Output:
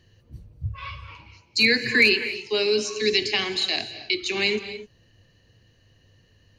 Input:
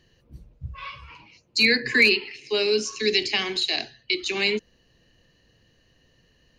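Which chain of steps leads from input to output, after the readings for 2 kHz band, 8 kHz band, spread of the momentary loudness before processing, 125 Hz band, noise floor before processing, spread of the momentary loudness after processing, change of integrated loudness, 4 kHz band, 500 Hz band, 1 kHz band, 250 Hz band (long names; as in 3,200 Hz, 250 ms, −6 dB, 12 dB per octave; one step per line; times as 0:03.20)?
+0.5 dB, 0.0 dB, 20 LU, +5.0 dB, −63 dBFS, 19 LU, 0.0 dB, 0.0 dB, +0.5 dB, +0.5 dB, +0.5 dB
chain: parametric band 100 Hz +14.5 dB 0.35 octaves
reverb whose tail is shaped and stops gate 290 ms rising, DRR 11.5 dB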